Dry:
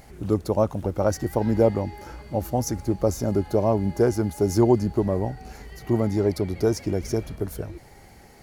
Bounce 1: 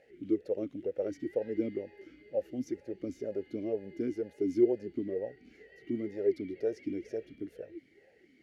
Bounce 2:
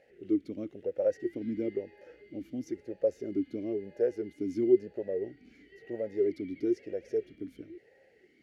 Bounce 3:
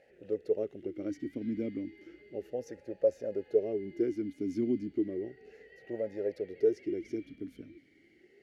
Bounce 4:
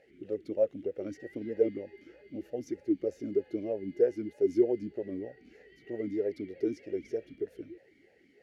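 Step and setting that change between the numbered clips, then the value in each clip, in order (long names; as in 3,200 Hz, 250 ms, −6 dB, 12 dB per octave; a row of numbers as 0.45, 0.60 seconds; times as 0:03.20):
formant filter swept between two vowels, speed: 2.1, 1, 0.33, 3.2 Hertz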